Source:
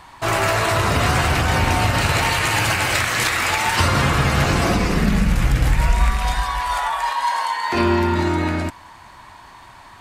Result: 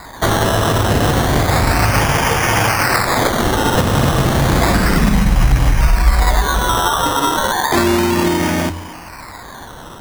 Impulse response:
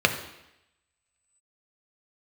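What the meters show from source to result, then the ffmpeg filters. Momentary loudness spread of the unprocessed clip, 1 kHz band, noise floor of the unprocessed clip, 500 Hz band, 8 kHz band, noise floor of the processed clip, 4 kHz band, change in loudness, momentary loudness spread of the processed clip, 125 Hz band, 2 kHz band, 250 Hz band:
4 LU, +3.5 dB, -44 dBFS, +6.0 dB, +4.5 dB, -34 dBFS, +3.0 dB, +4.0 dB, 12 LU, +4.0 dB, +2.0 dB, +5.5 dB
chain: -filter_complex "[0:a]lowpass=f=5000:t=q:w=8.1,acompressor=threshold=0.112:ratio=6,lowshelf=f=110:g=6.5,asplit=2[s0][s1];[1:a]atrim=start_sample=2205,asetrate=22932,aresample=44100[s2];[s1][s2]afir=irnorm=-1:irlink=0,volume=0.0355[s3];[s0][s3]amix=inputs=2:normalize=0,acrusher=samples=15:mix=1:aa=0.000001:lfo=1:lforange=9:lforate=0.32,volume=2.11"

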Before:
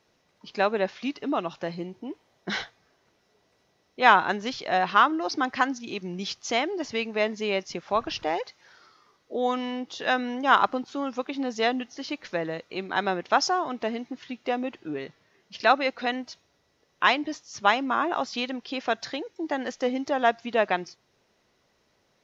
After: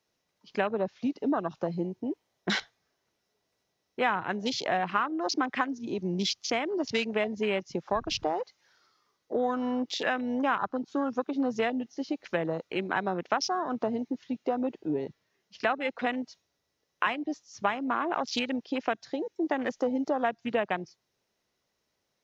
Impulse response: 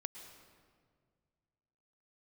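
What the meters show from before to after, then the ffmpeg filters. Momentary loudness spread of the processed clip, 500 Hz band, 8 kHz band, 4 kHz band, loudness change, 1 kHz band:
6 LU, -2.5 dB, no reading, -4.0 dB, -4.0 dB, -6.5 dB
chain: -filter_complex "[0:a]crystalizer=i=1.5:c=0,acrossover=split=160[s0][s1];[s1]acompressor=threshold=0.0355:ratio=5[s2];[s0][s2]amix=inputs=2:normalize=0,afwtdn=0.0141,volume=1.58"

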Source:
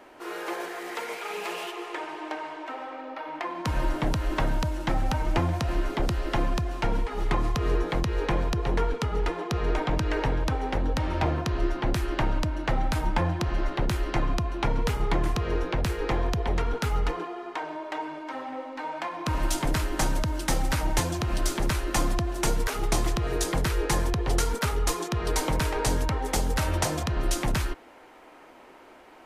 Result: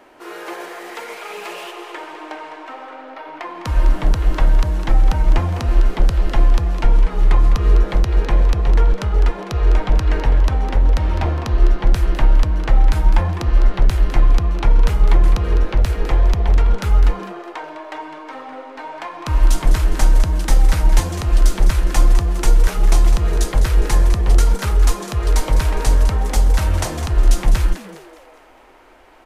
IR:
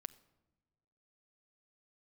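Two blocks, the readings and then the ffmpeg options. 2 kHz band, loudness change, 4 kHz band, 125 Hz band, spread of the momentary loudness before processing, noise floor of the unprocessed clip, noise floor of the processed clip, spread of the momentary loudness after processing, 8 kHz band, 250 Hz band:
+3.0 dB, +10.5 dB, +3.0 dB, +10.5 dB, 8 LU, -50 dBFS, -40 dBFS, 15 LU, +3.0 dB, +2.5 dB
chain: -filter_complex "[0:a]asplit=6[s0][s1][s2][s3][s4][s5];[s1]adelay=205,afreqshift=150,volume=0.282[s6];[s2]adelay=410,afreqshift=300,volume=0.127[s7];[s3]adelay=615,afreqshift=450,volume=0.0569[s8];[s4]adelay=820,afreqshift=600,volume=0.0257[s9];[s5]adelay=1025,afreqshift=750,volume=0.0116[s10];[s0][s6][s7][s8][s9][s10]amix=inputs=6:normalize=0,asubboost=boost=5.5:cutoff=67,volume=1.33"

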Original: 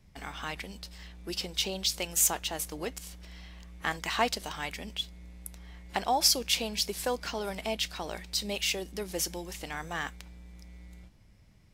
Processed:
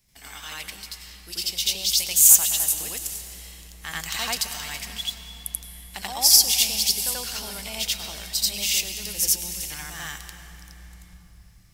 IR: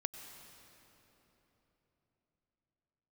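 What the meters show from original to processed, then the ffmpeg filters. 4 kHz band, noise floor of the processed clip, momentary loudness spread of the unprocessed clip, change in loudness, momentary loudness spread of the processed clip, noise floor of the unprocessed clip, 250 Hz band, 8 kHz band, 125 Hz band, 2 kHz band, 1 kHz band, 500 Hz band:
+8.0 dB, -49 dBFS, 21 LU, +10.5 dB, 22 LU, -58 dBFS, -4.0 dB, +12.5 dB, +1.0 dB, +2.5 dB, -4.0 dB, -7.0 dB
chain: -filter_complex "[0:a]asubboost=boost=5:cutoff=150,crystalizer=i=8.5:c=0,asplit=2[s0][s1];[1:a]atrim=start_sample=2205,adelay=86[s2];[s1][s2]afir=irnorm=-1:irlink=0,volume=1.68[s3];[s0][s3]amix=inputs=2:normalize=0,volume=0.251"

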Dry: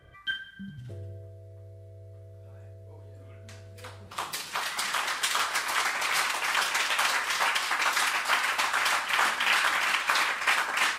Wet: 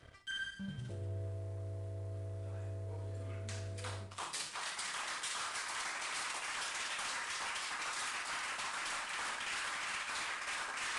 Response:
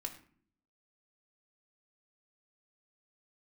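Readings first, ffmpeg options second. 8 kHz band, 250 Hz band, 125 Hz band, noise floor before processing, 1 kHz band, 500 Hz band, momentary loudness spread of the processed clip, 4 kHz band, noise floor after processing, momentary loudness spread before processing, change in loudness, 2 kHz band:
-8.5 dB, -4.5 dB, +2.5 dB, -47 dBFS, -14.0 dB, -8.5 dB, 6 LU, -12.0 dB, -48 dBFS, 18 LU, -14.0 dB, -13.5 dB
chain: -filter_complex "[0:a]volume=18.8,asoftclip=hard,volume=0.0531,areverse,acompressor=threshold=0.00794:ratio=16,areverse,aeval=exprs='sgn(val(0))*max(abs(val(0))-0.00106,0)':c=same,highshelf=f=8300:g=10,asplit=2[s0][s1];[1:a]atrim=start_sample=2205,adelay=58[s2];[s1][s2]afir=irnorm=-1:irlink=0,volume=0.473[s3];[s0][s3]amix=inputs=2:normalize=0,aresample=22050,aresample=44100,volume=1.5"

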